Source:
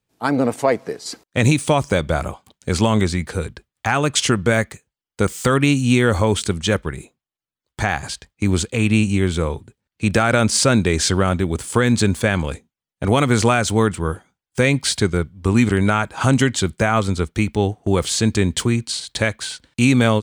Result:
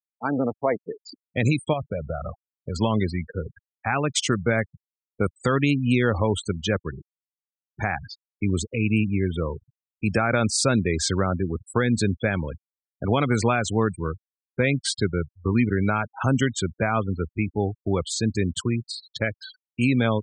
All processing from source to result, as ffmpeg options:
-filter_complex "[0:a]asettb=1/sr,asplit=3[a][b][c];[a]atrim=end=1.734[d];[b]atrim=start=1.73:end=2.76,asetpts=PTS-STARTPTS,afade=t=in:d=0.004:c=qsin,afade=t=out:st=1.026:d=0.004:c=qsin,aecho=1:1:1.6:0.48,atrim=end_sample=45423,acompressor=threshold=-19dB:ratio=3:attack=3.2:release=140:knee=1:detection=peak[e];[c]atrim=start=2.756[f];[d][e]acrossfade=d=0.004:c1=hsin:c2=qsin[g];[g][f]acrossfade=d=0.004:c1=qsin:c2=hsin,highpass=f=65:w=0.5412,highpass=f=65:w=1.3066,dynaudnorm=f=380:g=21:m=12dB,afftfilt=real='re*gte(hypot(re,im),0.1)':imag='im*gte(hypot(re,im),0.1)':win_size=1024:overlap=0.75,volume=-6dB"

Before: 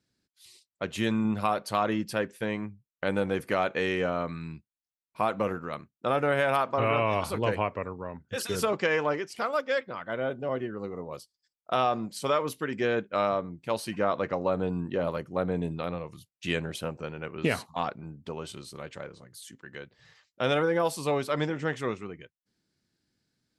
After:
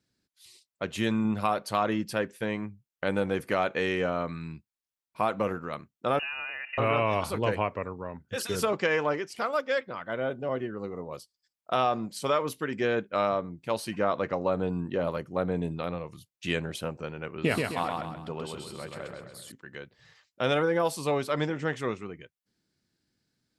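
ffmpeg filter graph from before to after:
-filter_complex "[0:a]asettb=1/sr,asplit=3[a][b][c];[a]atrim=end=6.194[d];[b]atrim=start=6.19:end=6.78,asetpts=PTS-STARTPTS,afade=t=in:d=0.004:c=qsin,afade=t=out:st=0.586:d=0.004:c=qsin,acompressor=threshold=-31dB:ratio=12:attack=3.2:release=140:knee=1:detection=peak,asuperstop=centerf=770:order=12:qfactor=3.5,lowpass=f=2.6k:t=q:w=0.5098,lowpass=f=2.6k:t=q:w=0.6013,lowpass=f=2.6k:t=q:w=0.9,lowpass=f=2.6k:t=q:w=2.563,afreqshift=-3000[e];[c]atrim=start=6.776[f];[d][e]acrossfade=d=0.004:c1=hsin:c2=qsin[g];[g][f]acrossfade=d=0.004:c1=qsin:c2=hsin,asettb=1/sr,asplit=3[h][i][j];[h]atrim=end=17.344[k];[i]atrim=start=17.34:end=19.52,asetpts=PTS-STARTPTS,afade=t=in:d=0.004:c=qsin,afade=t=out:st=2.176:d=0.004:c=qsin,bandreject=f=6.1k:w=6.4,aecho=1:1:130|260|390|520|650:0.668|0.281|0.118|0.0495|0.0208,atrim=end_sample=96138[l];[j]atrim=start=19.516[m];[k][l]acrossfade=d=0.004:c1=hsin:c2=qsin[n];[n][m]acrossfade=d=0.004:c1=qsin:c2=hsin"

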